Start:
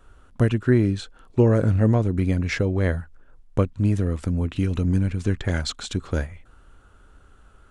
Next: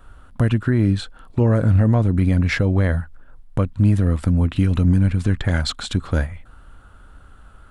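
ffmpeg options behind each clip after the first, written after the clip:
-af "alimiter=limit=0.2:level=0:latency=1:release=75,equalizer=f=400:t=o:w=0.67:g=-7,equalizer=f=2500:t=o:w=0.67:g=-3,equalizer=f=6300:t=o:w=0.67:g=-8,volume=2.24"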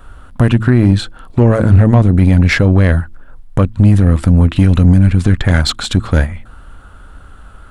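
-af "bandreject=f=110.8:t=h:w=4,bandreject=f=221.6:t=h:w=4,bandreject=f=332.4:t=h:w=4,apsyclip=3.16,aeval=exprs='1.06*(cos(1*acos(clip(val(0)/1.06,-1,1)))-cos(1*PI/2))+0.0668*(cos(4*acos(clip(val(0)/1.06,-1,1)))-cos(4*PI/2))':c=same,volume=0.841"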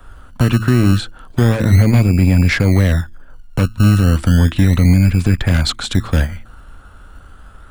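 -filter_complex "[0:a]acrossover=split=210|370|1900[s0][s1][s2][s3];[s0]acrusher=samples=25:mix=1:aa=0.000001:lfo=1:lforange=15:lforate=0.33[s4];[s2]aeval=exprs='0.15*(abs(mod(val(0)/0.15+3,4)-2)-1)':c=same[s5];[s4][s1][s5][s3]amix=inputs=4:normalize=0,volume=0.75"

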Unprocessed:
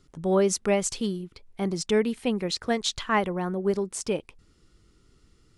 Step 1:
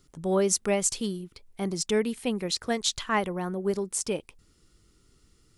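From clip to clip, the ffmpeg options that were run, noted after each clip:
-af "highshelf=f=7100:g=12,volume=0.75"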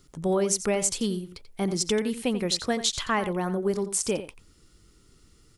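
-filter_complex "[0:a]acompressor=threshold=0.0562:ratio=6,asplit=2[s0][s1];[s1]adelay=87.46,volume=0.251,highshelf=f=4000:g=-1.97[s2];[s0][s2]amix=inputs=2:normalize=0,volume=1.58"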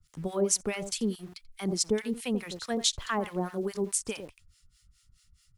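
-filter_complex "[0:a]acrossover=split=970[s0][s1];[s0]aeval=exprs='val(0)*(1-1/2+1/2*cos(2*PI*4.7*n/s))':c=same[s2];[s1]aeval=exprs='val(0)*(1-1/2-1/2*cos(2*PI*4.7*n/s))':c=same[s3];[s2][s3]amix=inputs=2:normalize=0,acrossover=split=140|1400|1600[s4][s5][s6][s7];[s5]aeval=exprs='val(0)*gte(abs(val(0)),0.00282)':c=same[s8];[s4][s8][s6][s7]amix=inputs=4:normalize=0"

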